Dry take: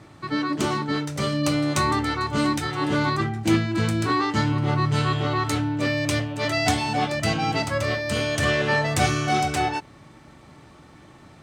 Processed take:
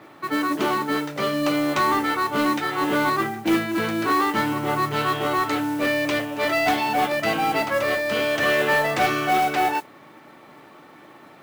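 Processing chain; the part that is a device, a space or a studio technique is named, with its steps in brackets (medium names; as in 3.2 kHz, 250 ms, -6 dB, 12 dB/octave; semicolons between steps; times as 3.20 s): carbon microphone (band-pass 310–3100 Hz; saturation -17.5 dBFS, distortion -19 dB; modulation noise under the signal 20 dB); trim +5 dB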